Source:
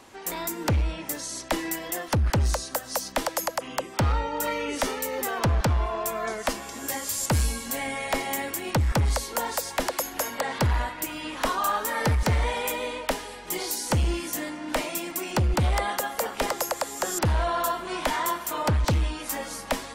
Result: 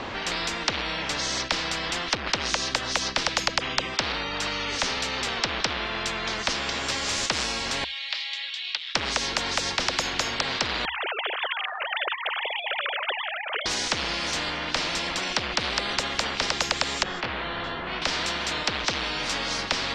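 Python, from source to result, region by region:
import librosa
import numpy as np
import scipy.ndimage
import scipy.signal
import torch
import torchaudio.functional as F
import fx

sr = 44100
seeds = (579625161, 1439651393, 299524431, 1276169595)

y = fx.chain(x, sr, fx.ladder_bandpass(hz=3900.0, resonance_pct=60),
    fx.peak_eq(hz=3300.0, db=5.5, octaves=0.85),
    fx.resample_bad(factor=2, down='filtered', up='hold'), at=(7.84, 8.95))
y = fx.chain(y, sr, fx.sine_speech(),
    fx.steep_highpass(hz=360.0, slope=36), at=(10.85, 13.66))
y = fx.chain(y, sr, fx.spacing_loss(db_at_10k=28),
    fx.detune_double(cents=29), at=(17.03, 18.02))
y = scipy.signal.sosfilt(scipy.signal.butter(4, 4300.0, 'lowpass', fs=sr, output='sos'), y)
y = fx.peak_eq(y, sr, hz=69.0, db=3.5, octaves=0.26)
y = fx.spectral_comp(y, sr, ratio=10.0)
y = y * 10.0 ** (2.0 / 20.0)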